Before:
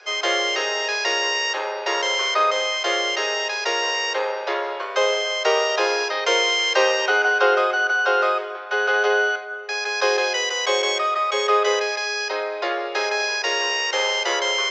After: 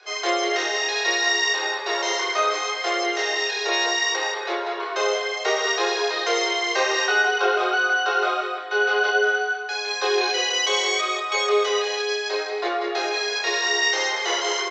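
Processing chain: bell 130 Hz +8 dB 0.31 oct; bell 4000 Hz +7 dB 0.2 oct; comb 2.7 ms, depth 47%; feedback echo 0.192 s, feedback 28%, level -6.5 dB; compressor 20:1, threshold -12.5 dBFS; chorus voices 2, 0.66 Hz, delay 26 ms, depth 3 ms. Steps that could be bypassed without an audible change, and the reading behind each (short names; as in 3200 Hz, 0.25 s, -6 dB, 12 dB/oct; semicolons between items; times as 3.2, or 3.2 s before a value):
bell 130 Hz: input band starts at 300 Hz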